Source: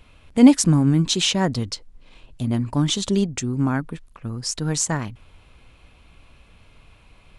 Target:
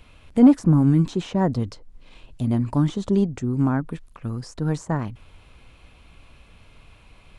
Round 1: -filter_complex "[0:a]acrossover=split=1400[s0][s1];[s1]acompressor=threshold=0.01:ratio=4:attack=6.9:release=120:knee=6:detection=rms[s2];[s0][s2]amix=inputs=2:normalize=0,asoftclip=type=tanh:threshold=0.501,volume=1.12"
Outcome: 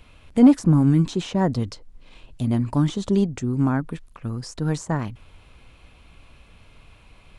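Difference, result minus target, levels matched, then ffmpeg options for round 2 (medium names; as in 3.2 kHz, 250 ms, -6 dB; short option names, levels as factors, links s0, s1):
compression: peak gain reduction -5 dB
-filter_complex "[0:a]acrossover=split=1400[s0][s1];[s1]acompressor=threshold=0.00473:ratio=4:attack=6.9:release=120:knee=6:detection=rms[s2];[s0][s2]amix=inputs=2:normalize=0,asoftclip=type=tanh:threshold=0.501,volume=1.12"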